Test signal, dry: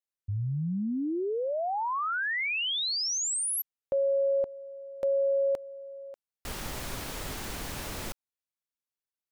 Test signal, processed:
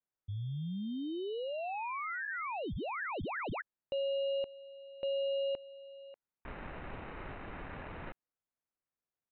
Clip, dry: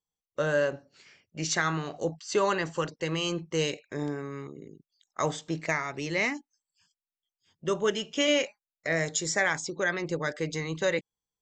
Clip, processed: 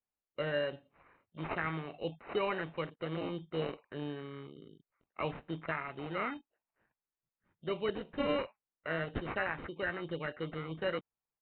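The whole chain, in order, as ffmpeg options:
-af "acrusher=samples=13:mix=1:aa=0.000001,aresample=8000,aresample=44100,volume=-7.5dB"

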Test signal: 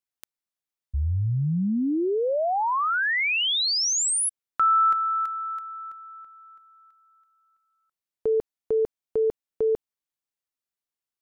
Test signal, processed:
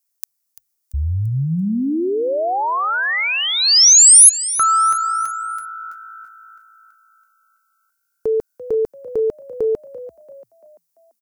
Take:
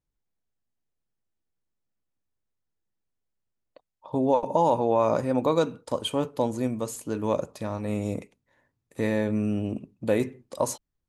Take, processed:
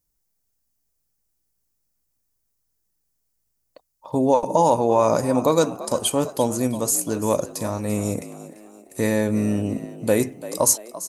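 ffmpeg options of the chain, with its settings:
-filter_complex "[0:a]aexciter=amount=5.3:drive=1.6:freq=4.8k,asplit=5[a][b][c][d][e];[b]adelay=340,afreqshift=55,volume=-15dB[f];[c]adelay=680,afreqshift=110,volume=-22.3dB[g];[d]adelay=1020,afreqshift=165,volume=-29.7dB[h];[e]adelay=1360,afreqshift=220,volume=-37dB[i];[a][f][g][h][i]amix=inputs=5:normalize=0,volume=4.5dB"

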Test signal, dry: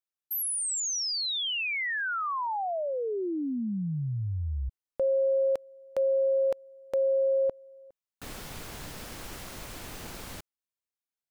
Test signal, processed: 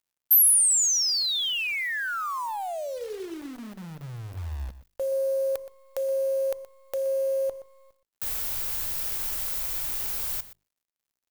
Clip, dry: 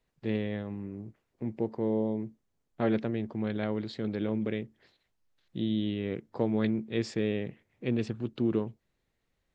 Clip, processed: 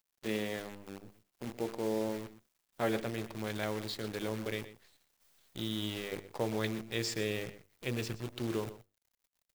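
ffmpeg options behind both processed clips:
-filter_complex "[0:a]aemphasis=mode=production:type=bsi,bandreject=f=50:t=h:w=6,bandreject=f=100:t=h:w=6,bandreject=f=150:t=h:w=6,bandreject=f=200:t=h:w=6,bandreject=f=250:t=h:w=6,bandreject=f=300:t=h:w=6,bandreject=f=350:t=h:w=6,bandreject=f=400:t=h:w=6,bandreject=f=450:t=h:w=6,bandreject=f=500:t=h:w=6,asubboost=boost=9.5:cutoff=68,acrusher=bits=8:dc=4:mix=0:aa=0.000001,asplit=2[a][b];[b]adelay=122.4,volume=-14dB,highshelf=f=4k:g=-2.76[c];[a][c]amix=inputs=2:normalize=0"

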